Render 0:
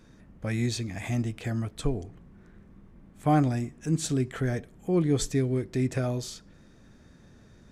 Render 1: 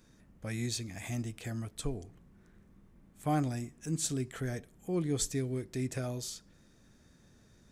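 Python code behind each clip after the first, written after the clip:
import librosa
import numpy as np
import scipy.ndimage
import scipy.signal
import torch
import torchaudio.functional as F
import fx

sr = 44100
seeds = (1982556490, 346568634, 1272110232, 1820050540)

y = fx.high_shelf(x, sr, hz=4900.0, db=11.5)
y = F.gain(torch.from_numpy(y), -8.0).numpy()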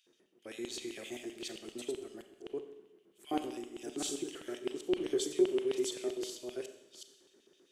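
y = fx.reverse_delay(x, sr, ms=370, wet_db=-1)
y = fx.filter_lfo_highpass(y, sr, shape='square', hz=7.7, low_hz=370.0, high_hz=3000.0, q=8.0)
y = fx.rev_schroeder(y, sr, rt60_s=0.97, comb_ms=29, drr_db=8.0)
y = F.gain(torch.from_numpy(y), -8.5).numpy()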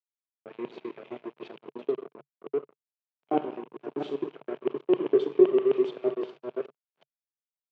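y = np.sign(x) * np.maximum(np.abs(x) - 10.0 ** (-45.0 / 20.0), 0.0)
y = fx.cabinet(y, sr, low_hz=140.0, low_slope=24, high_hz=2600.0, hz=(140.0, 430.0, 640.0, 920.0, 1900.0), db=(7, 7, 6, 4, -6))
y = F.gain(torch.from_numpy(y), 6.5).numpy()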